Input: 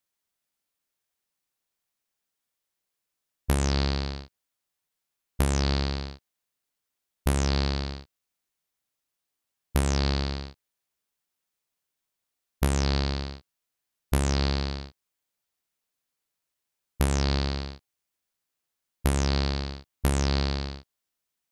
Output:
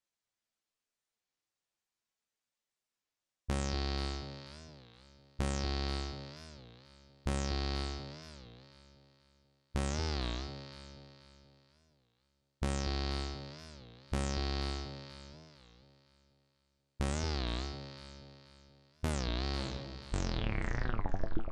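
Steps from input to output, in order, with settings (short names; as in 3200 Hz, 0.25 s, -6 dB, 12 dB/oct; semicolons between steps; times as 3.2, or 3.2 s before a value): tape stop at the end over 1.97 s; LPF 8200 Hz 24 dB/oct; in parallel at +1 dB: vocal rider; on the sum: limiter -11 dBFS, peak gain reduction 6.5 dB; resonator 110 Hz, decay 0.18 s, harmonics all, mix 80%; on a send: echo with dull and thin repeats by turns 0.242 s, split 810 Hz, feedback 59%, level -6.5 dB; on the sum: record warp 33 1/3 rpm, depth 250 cents; gain -4.5 dB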